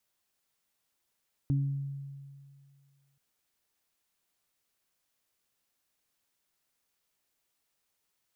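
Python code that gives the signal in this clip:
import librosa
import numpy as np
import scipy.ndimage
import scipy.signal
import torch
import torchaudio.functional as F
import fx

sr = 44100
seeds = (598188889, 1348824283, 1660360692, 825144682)

y = fx.additive(sr, length_s=1.68, hz=139.0, level_db=-23.5, upper_db=(-7.5,), decay_s=2.09, upper_decays_s=(0.62,))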